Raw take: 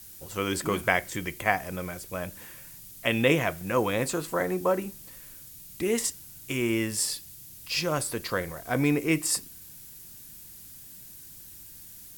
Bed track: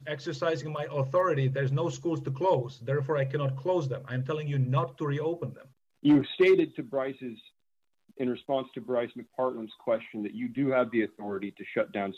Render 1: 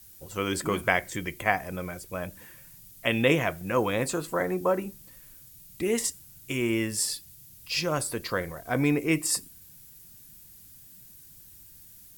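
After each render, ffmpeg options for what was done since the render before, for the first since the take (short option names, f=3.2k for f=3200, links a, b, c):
-af "afftdn=nr=6:nf=-47"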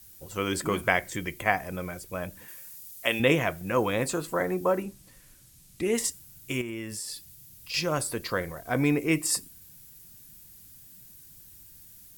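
-filter_complex "[0:a]asettb=1/sr,asplit=3[a][b][c];[a]atrim=end=2.484[d];[b]atrim=start=2.48:end=3.2,asetpts=PTS-STARTPTS,afade=t=in:d=0.004:c=qsin,afade=t=out:st=0.716:d=0.004:c=qsin,bass=f=250:g=-12,treble=f=4k:g=6[e];[c]atrim=start=3.196[f];[d][e]acrossfade=d=0.004:c1=hsin:c2=qsin[g];[g][f]acrossfade=d=0.004:c1=qsin:c2=hsin,asettb=1/sr,asplit=3[h][i][j];[h]atrim=end=4.824[k];[i]atrim=start=4.82:end=5.94,asetpts=PTS-STARTPTS,afade=t=in:d=0.004:c=qsin,afade=t=out:st=1.116:d=0.004:c=qsin,lowpass=11k[l];[j]atrim=start=5.936[m];[k][l]acrossfade=d=0.004:c1=hsin:c2=qsin[n];[n][m]acrossfade=d=0.004:c1=qsin:c2=hsin,asettb=1/sr,asplit=3[o][p][q];[o]atrim=end=6.614[r];[p]atrim=start=6.61:end=7.74,asetpts=PTS-STARTPTS,afade=t=in:d=0.004:c=qsin,afade=t=out:st=1.126:d=0.004:c=qsin,acompressor=threshold=-33dB:ratio=5:attack=3.2:release=140:knee=1:detection=peak[s];[q]atrim=start=7.736[t];[r][s]acrossfade=d=0.004:c1=hsin:c2=qsin[u];[u][t]acrossfade=d=0.004:c1=qsin:c2=hsin"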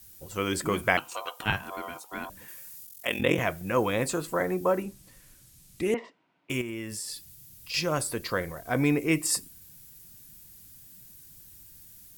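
-filter_complex "[0:a]asettb=1/sr,asplit=3[a][b][c];[a]atrim=end=0.974[d];[b]atrim=start=0.97:end=2.3,asetpts=PTS-STARTPTS,afade=t=in:d=0.004:c=qsin,afade=t=out:st=1.326:d=0.004:c=qsin,aeval=exprs='val(0)*sin(2*PI*860*n/s)':c=same[e];[c]atrim=start=2.296[f];[d][e]acrossfade=d=0.004:c1=hsin:c2=qsin[g];[g][f]acrossfade=d=0.004:c1=qsin:c2=hsin,asettb=1/sr,asplit=3[h][i][j];[h]atrim=end=2.854[k];[i]atrim=start=2.85:end=3.39,asetpts=PTS-STARTPTS,afade=t=in:d=0.004:c=qsin,afade=t=out:st=0.536:d=0.004:c=qsin,aeval=exprs='val(0)*sin(2*PI*22*n/s)':c=same[l];[j]atrim=start=3.386[m];[k][l]acrossfade=d=0.004:c1=hsin:c2=qsin[n];[n][m]acrossfade=d=0.004:c1=qsin:c2=hsin,asettb=1/sr,asplit=3[o][p][q];[o]atrim=end=5.944[r];[p]atrim=start=5.94:end=6.5,asetpts=PTS-STARTPTS,afade=t=in:d=0.004:c=qsin,afade=t=out:st=0.556:d=0.004:c=qsin,highpass=f=270:w=0.5412,highpass=f=270:w=1.3066,equalizer=f=340:t=q:w=4:g=-4,equalizer=f=680:t=q:w=4:g=5,equalizer=f=980:t=q:w=4:g=6,equalizer=f=1.7k:t=q:w=4:g=-5,lowpass=f=2.4k:w=0.5412,lowpass=f=2.4k:w=1.3066[s];[q]atrim=start=6.496[t];[r][s]acrossfade=d=0.004:c1=hsin:c2=qsin[u];[u][t]acrossfade=d=0.004:c1=qsin:c2=hsin"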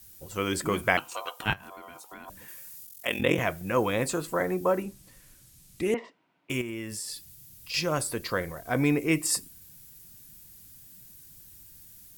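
-filter_complex "[0:a]asettb=1/sr,asplit=3[a][b][c];[a]atrim=end=1.534[d];[b]atrim=start=1.53:end=2.28,asetpts=PTS-STARTPTS,afade=t=in:d=0.004:c=qsin,afade=t=out:st=0.746:d=0.004:c=qsin,acompressor=threshold=-41dB:ratio=5:attack=3.2:release=140:knee=1:detection=peak[e];[c]atrim=start=2.276[f];[d][e]acrossfade=d=0.004:c1=hsin:c2=qsin[g];[g][f]acrossfade=d=0.004:c1=qsin:c2=hsin"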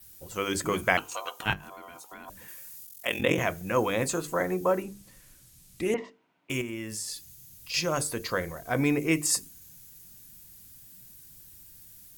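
-af "bandreject=f=50:t=h:w=6,bandreject=f=100:t=h:w=6,bandreject=f=150:t=h:w=6,bandreject=f=200:t=h:w=6,bandreject=f=250:t=h:w=6,bandreject=f=300:t=h:w=6,bandreject=f=350:t=h:w=6,bandreject=f=400:t=h:w=6,bandreject=f=450:t=h:w=6,adynamicequalizer=threshold=0.00112:dfrequency=6500:dqfactor=7.3:tfrequency=6500:tqfactor=7.3:attack=5:release=100:ratio=0.375:range=4:mode=boostabove:tftype=bell"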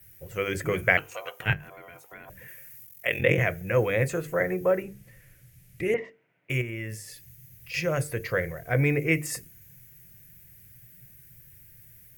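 -af "equalizer=f=125:t=o:w=1:g=11,equalizer=f=250:t=o:w=1:g=-9,equalizer=f=500:t=o:w=1:g=7,equalizer=f=1k:t=o:w=1:g=-11,equalizer=f=2k:t=o:w=1:g=11,equalizer=f=4k:t=o:w=1:g=-10,equalizer=f=8k:t=o:w=1:g=-8"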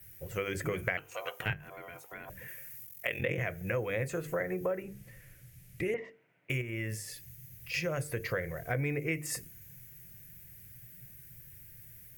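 -af "acompressor=threshold=-31dB:ratio=4"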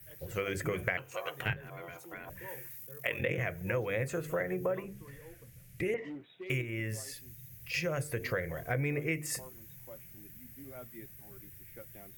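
-filter_complex "[1:a]volume=-23dB[a];[0:a][a]amix=inputs=2:normalize=0"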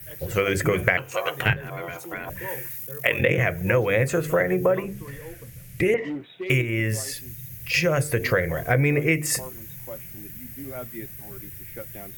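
-af "volume=12dB"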